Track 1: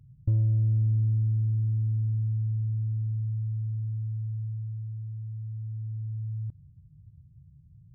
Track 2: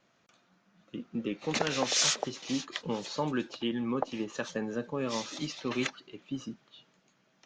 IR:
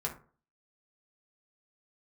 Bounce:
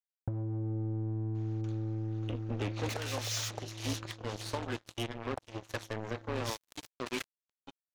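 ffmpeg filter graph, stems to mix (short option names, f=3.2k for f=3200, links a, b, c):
-filter_complex "[0:a]highpass=f=130:p=1,acompressor=threshold=-31dB:ratio=10,volume=0.5dB[a];[1:a]highpass=f=270:w=0.5412,highpass=f=270:w=1.3066,adelay=1350,volume=-1.5dB[b];[a][b]amix=inputs=2:normalize=0,acrusher=bits=4:mix=0:aa=0.5,alimiter=level_in=1.5dB:limit=-24dB:level=0:latency=1:release=485,volume=-1.5dB"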